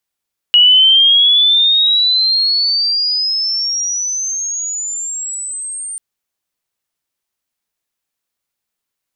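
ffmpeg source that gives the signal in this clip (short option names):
-f lavfi -i "aevalsrc='pow(10,(-4.5-18*t/5.44)/20)*sin(2*PI*2900*5.44/log(8900/2900)*(exp(log(8900/2900)*t/5.44)-1))':d=5.44:s=44100"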